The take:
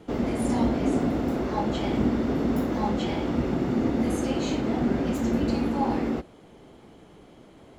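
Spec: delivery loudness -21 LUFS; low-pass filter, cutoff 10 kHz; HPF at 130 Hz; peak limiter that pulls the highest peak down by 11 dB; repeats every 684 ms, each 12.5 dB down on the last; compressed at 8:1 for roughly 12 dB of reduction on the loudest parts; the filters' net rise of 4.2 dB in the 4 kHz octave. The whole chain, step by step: high-pass 130 Hz; low-pass 10 kHz; peaking EQ 4 kHz +5.5 dB; compression 8:1, threshold -33 dBFS; peak limiter -35.5 dBFS; feedback delay 684 ms, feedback 24%, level -12.5 dB; trim +22.5 dB

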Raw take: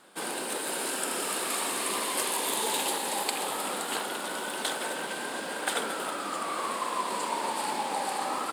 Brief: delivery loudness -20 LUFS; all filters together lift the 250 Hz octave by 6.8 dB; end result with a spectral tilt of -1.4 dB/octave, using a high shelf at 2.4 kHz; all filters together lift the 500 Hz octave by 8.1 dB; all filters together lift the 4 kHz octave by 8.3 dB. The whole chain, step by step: peaking EQ 250 Hz +5.5 dB; peaking EQ 500 Hz +8 dB; treble shelf 2.4 kHz +7 dB; peaking EQ 4 kHz +4 dB; trim +4 dB

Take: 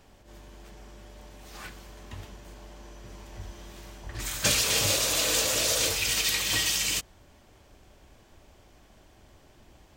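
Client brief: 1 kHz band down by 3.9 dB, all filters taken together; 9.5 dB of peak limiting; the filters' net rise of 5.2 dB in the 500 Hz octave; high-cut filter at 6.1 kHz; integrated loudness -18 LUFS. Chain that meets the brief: low-pass 6.1 kHz; peaking EQ 500 Hz +8 dB; peaking EQ 1 kHz -8 dB; trim +13.5 dB; peak limiter -8.5 dBFS

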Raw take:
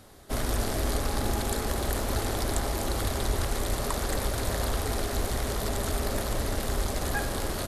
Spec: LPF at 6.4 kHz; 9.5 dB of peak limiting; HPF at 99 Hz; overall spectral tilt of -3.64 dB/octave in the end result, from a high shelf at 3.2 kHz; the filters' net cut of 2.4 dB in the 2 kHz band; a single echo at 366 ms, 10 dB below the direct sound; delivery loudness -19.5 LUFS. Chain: high-pass 99 Hz; low-pass 6.4 kHz; peaking EQ 2 kHz -5 dB; treble shelf 3.2 kHz +6.5 dB; peak limiter -21.5 dBFS; delay 366 ms -10 dB; trim +12.5 dB

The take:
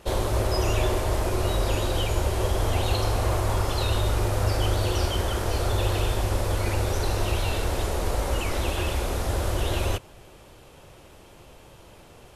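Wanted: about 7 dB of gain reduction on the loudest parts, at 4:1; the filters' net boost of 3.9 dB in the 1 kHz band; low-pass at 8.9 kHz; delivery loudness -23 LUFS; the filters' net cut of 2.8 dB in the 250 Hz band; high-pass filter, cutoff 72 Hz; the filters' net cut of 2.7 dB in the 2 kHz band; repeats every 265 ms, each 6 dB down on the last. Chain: high-pass 72 Hz; low-pass 8.9 kHz; peaking EQ 250 Hz -5 dB; peaking EQ 1 kHz +6.5 dB; peaking EQ 2 kHz -6 dB; compression 4:1, threshold -30 dBFS; feedback delay 265 ms, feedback 50%, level -6 dB; trim +9 dB

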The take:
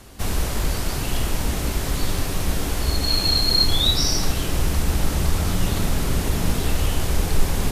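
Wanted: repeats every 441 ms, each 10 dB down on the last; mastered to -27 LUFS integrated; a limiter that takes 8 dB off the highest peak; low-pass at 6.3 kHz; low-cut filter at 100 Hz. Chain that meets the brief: high-pass 100 Hz; low-pass 6.3 kHz; peak limiter -16.5 dBFS; feedback delay 441 ms, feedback 32%, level -10 dB; trim -1 dB

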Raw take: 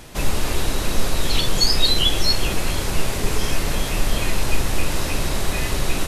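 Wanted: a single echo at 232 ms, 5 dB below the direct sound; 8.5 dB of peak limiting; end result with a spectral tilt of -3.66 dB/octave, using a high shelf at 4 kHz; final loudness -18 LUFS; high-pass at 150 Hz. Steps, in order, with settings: high-pass 150 Hz; treble shelf 4 kHz -3.5 dB; peak limiter -17.5 dBFS; delay 232 ms -5 dB; trim +7.5 dB

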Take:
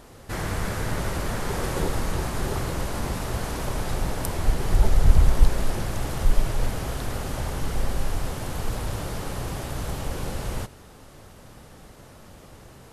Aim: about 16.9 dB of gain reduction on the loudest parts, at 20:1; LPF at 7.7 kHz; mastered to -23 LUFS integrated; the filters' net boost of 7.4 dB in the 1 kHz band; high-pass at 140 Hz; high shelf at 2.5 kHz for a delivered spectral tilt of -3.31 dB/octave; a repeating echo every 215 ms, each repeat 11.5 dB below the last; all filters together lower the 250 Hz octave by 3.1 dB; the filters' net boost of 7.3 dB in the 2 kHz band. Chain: high-pass 140 Hz; low-pass 7.7 kHz; peaking EQ 250 Hz -4 dB; peaking EQ 1 kHz +7.5 dB; peaking EQ 2 kHz +4.5 dB; treble shelf 2.5 kHz +5 dB; compression 20:1, threshold -39 dBFS; feedback delay 215 ms, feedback 27%, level -11.5 dB; trim +19.5 dB

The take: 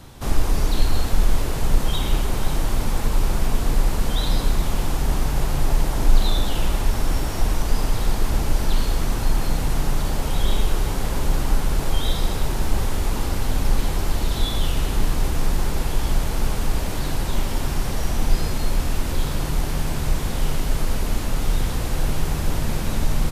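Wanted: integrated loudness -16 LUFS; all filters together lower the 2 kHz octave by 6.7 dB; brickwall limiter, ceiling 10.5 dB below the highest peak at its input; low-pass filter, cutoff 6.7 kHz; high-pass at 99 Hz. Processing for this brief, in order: high-pass 99 Hz; low-pass 6.7 kHz; peaking EQ 2 kHz -9 dB; trim +19 dB; peak limiter -7 dBFS

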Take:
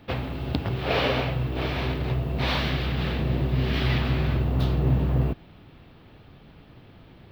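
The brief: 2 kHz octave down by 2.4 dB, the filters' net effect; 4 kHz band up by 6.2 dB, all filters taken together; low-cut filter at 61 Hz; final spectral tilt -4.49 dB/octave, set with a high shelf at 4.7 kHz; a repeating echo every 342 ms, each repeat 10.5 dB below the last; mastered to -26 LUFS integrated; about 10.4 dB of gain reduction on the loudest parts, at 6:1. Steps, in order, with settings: high-pass 61 Hz; peaking EQ 2 kHz -7 dB; peaking EQ 4 kHz +8.5 dB; treble shelf 4.7 kHz +4.5 dB; compression 6:1, threshold -30 dBFS; feedback delay 342 ms, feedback 30%, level -10.5 dB; trim +7.5 dB

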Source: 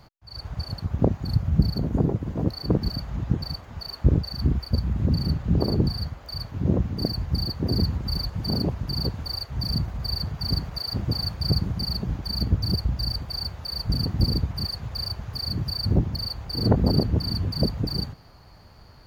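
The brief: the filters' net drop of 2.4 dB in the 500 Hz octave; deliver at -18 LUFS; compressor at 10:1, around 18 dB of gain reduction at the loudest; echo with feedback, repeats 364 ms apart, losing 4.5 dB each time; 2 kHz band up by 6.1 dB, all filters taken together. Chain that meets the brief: peaking EQ 500 Hz -3.5 dB; peaking EQ 2 kHz +8 dB; compression 10:1, threshold -31 dBFS; feedback delay 364 ms, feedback 60%, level -4.5 dB; trim +16 dB

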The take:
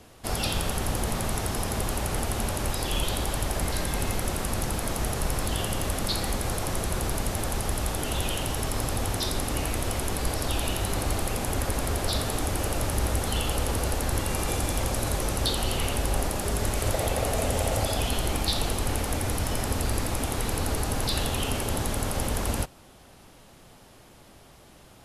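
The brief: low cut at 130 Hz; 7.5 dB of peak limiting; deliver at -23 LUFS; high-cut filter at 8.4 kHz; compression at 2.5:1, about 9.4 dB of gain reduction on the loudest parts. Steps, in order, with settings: high-pass 130 Hz; low-pass 8.4 kHz; compression 2.5:1, threshold -39 dBFS; trim +16.5 dB; peak limiter -13.5 dBFS

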